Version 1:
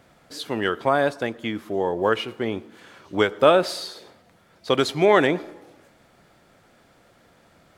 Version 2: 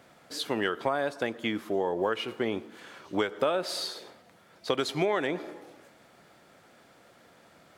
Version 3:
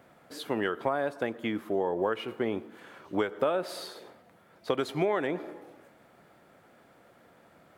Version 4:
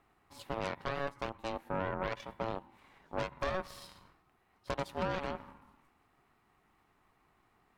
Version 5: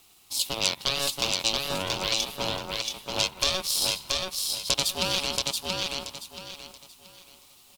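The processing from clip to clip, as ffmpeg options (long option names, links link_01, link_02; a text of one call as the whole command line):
ffmpeg -i in.wav -af "highpass=frequency=190:poles=1,acompressor=threshold=-24dB:ratio=6" out.wav
ffmpeg -i in.wav -af "equalizer=frequency=5400:width_type=o:width=2:gain=-9.5" out.wav
ffmpeg -i in.wav -af "aeval=exprs='0.237*(cos(1*acos(clip(val(0)/0.237,-1,1)))-cos(1*PI/2))+0.0668*(cos(8*acos(clip(val(0)/0.237,-1,1)))-cos(8*PI/2))':channel_layout=same,aeval=exprs='val(0)*sin(2*PI*560*n/s)':channel_layout=same,volume=-9dB" out.wav
ffmpeg -i in.wav -filter_complex "[0:a]aexciter=amount=12.7:drive=6.6:freq=2800,asplit=2[link_01][link_02];[link_02]aecho=0:1:679|1358|2037|2716:0.708|0.198|0.0555|0.0155[link_03];[link_01][link_03]amix=inputs=2:normalize=0,volume=2.5dB" out.wav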